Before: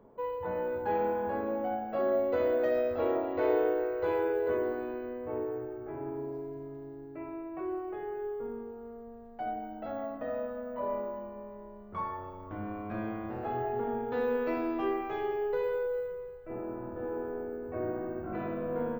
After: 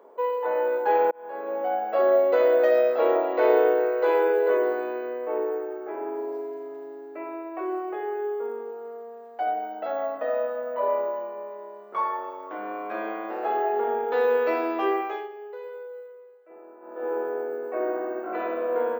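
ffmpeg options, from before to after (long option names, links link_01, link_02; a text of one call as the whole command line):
ffmpeg -i in.wav -filter_complex "[0:a]asplit=4[link_01][link_02][link_03][link_04];[link_01]atrim=end=1.11,asetpts=PTS-STARTPTS,afade=type=out:start_time=1.106:duration=0.004:curve=hsin[link_05];[link_02]atrim=start=1.11:end=15.29,asetpts=PTS-STARTPTS,afade=type=in:duration=0.74,afade=type=out:start_time=13.88:duration=0.3:silence=0.16788[link_06];[link_03]atrim=start=15.29:end=16.8,asetpts=PTS-STARTPTS,volume=-15.5dB[link_07];[link_04]atrim=start=16.8,asetpts=PTS-STARTPTS,afade=type=in:duration=0.3:silence=0.16788[link_08];[link_05][link_06][link_07][link_08]concat=n=4:v=0:a=1,highpass=frequency=390:width=0.5412,highpass=frequency=390:width=1.3066,acontrast=62,volume=3dB" out.wav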